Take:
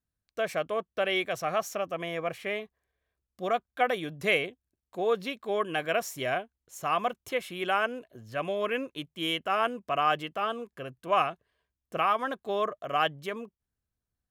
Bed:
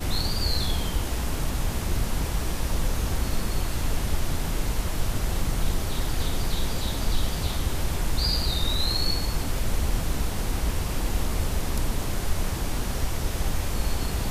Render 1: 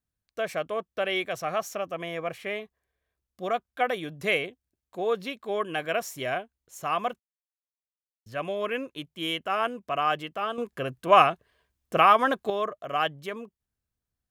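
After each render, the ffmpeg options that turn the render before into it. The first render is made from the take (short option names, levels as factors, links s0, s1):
-filter_complex "[0:a]asplit=5[s0][s1][s2][s3][s4];[s0]atrim=end=7.2,asetpts=PTS-STARTPTS,afade=t=out:st=7.196:d=0.004:c=hsin[s5];[s1]atrim=start=7.2:end=8.26,asetpts=PTS-STARTPTS,volume=0[s6];[s2]atrim=start=8.26:end=10.582,asetpts=PTS-STARTPTS,afade=t=in:d=0.004:c=hsin[s7];[s3]atrim=start=10.578:end=12.502,asetpts=PTS-STARTPTS,volume=2.51[s8];[s4]atrim=start=12.498[s9];[s5][s6][s7]concat=n=3:v=0:a=1[s10];[s10][s8]acrossfade=d=0.004:c1=hsin:c2=hsin[s11];[s11][s9]acrossfade=d=0.004:c1=hsin:c2=hsin"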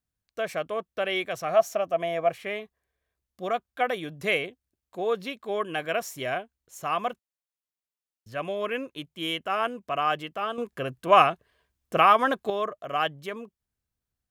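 -filter_complex "[0:a]asettb=1/sr,asplit=3[s0][s1][s2];[s0]atrim=end=1.494[s3];[s1]atrim=start=1.49:end=2.3,asetpts=PTS-STARTPTS,afade=t=in:d=0.004:c=qsin,afade=t=out:st=0.806:d=0.004:c=qsin,equalizer=f=670:w=5.5:g=12[s4];[s2]atrim=start=2.296[s5];[s3][s4]acrossfade=d=0.004:c1=hsin:c2=qsin[s6];[s6][s5]acrossfade=d=0.004:c1=qsin:c2=hsin"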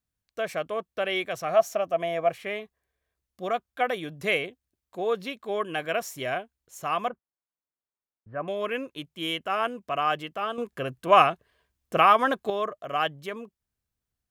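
-filter_complex "[0:a]asettb=1/sr,asplit=3[s0][s1][s2];[s0]atrim=end=7.094[s3];[s1]atrim=start=7.09:end=8.48,asetpts=PTS-STARTPTS,afade=t=in:d=0.004:c=qsin,afade=t=out:st=1.386:d=0.004:c=qsin,lowpass=f=1600:w=0.5412,lowpass=f=1600:w=1.3066[s4];[s2]atrim=start=8.476[s5];[s3][s4]acrossfade=d=0.004:c1=hsin:c2=qsin[s6];[s6][s5]acrossfade=d=0.004:c1=qsin:c2=hsin"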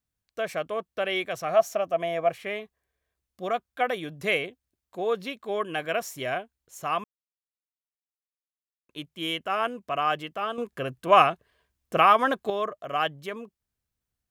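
-filter_complex "[0:a]asplit=3[s0][s1][s2];[s0]atrim=end=7.04,asetpts=PTS-STARTPTS,afade=t=out:st=7.036:d=0.004:c=hsin[s3];[s1]atrim=start=7.04:end=8.89,asetpts=PTS-STARTPTS,volume=0[s4];[s2]atrim=start=8.89,asetpts=PTS-STARTPTS,afade=t=in:d=0.004:c=hsin[s5];[s3][s4][s5]concat=n=3:v=0:a=1"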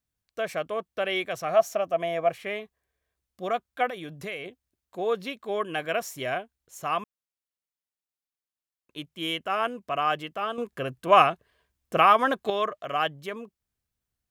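-filter_complex "[0:a]asettb=1/sr,asplit=3[s0][s1][s2];[s0]atrim=end=3.874[s3];[s1]atrim=start=3.87:end=4.46,asetpts=PTS-STARTPTS,afade=t=in:d=0.004:c=qsin,afade=t=out:st=0.586:d=0.004:c=qsin,acompressor=threshold=0.02:ratio=3:attack=3.2:release=140:knee=1:detection=peak[s4];[s2]atrim=start=4.456[s5];[s3][s4]acrossfade=d=0.004:c1=hsin:c2=qsin[s6];[s6][s5]acrossfade=d=0.004:c1=qsin:c2=hsin,asettb=1/sr,asplit=3[s7][s8][s9];[s7]atrim=end=12.454[s10];[s8]atrim=start=12.45:end=12.93,asetpts=PTS-STARTPTS,afade=t=in:d=0.004:c=qsin,afade=t=out:st=0.476:d=0.004:c=qsin,equalizer=f=2800:w=0.52:g=6.5[s11];[s9]atrim=start=12.926[s12];[s10][s11]acrossfade=d=0.004:c1=hsin:c2=qsin[s13];[s13][s12]acrossfade=d=0.004:c1=qsin:c2=hsin"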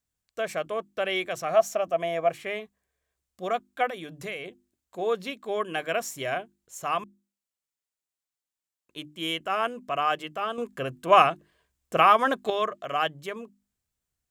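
-af "equalizer=f=7500:w=2.6:g=5.5,bandreject=f=50:t=h:w=6,bandreject=f=100:t=h:w=6,bandreject=f=150:t=h:w=6,bandreject=f=200:t=h:w=6,bandreject=f=250:t=h:w=6,bandreject=f=300:t=h:w=6,bandreject=f=350:t=h:w=6"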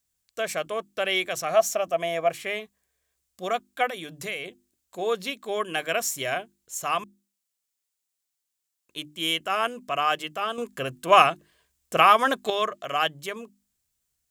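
-af "highshelf=f=2800:g=9.5"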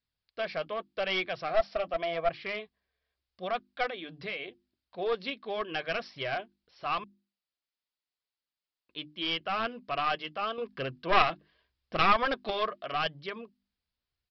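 -af "aresample=11025,aeval=exprs='clip(val(0),-1,0.0708)':c=same,aresample=44100,flanger=delay=0.4:depth=4.2:regen=-54:speed=0.83:shape=triangular"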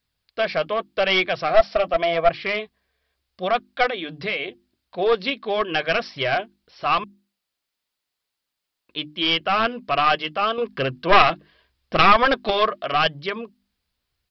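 -af "volume=3.55,alimiter=limit=0.891:level=0:latency=1"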